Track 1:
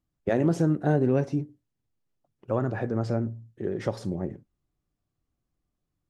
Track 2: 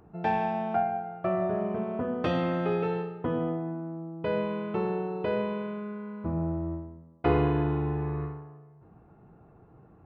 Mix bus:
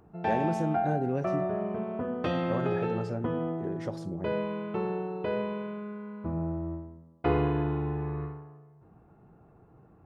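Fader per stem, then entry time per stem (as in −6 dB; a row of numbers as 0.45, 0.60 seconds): −7.0, −2.0 decibels; 0.00, 0.00 seconds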